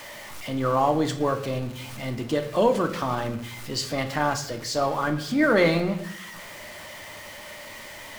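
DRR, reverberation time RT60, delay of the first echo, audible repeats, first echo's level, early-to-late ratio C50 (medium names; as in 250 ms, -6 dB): 6.0 dB, 0.70 s, no echo, no echo, no echo, 11.0 dB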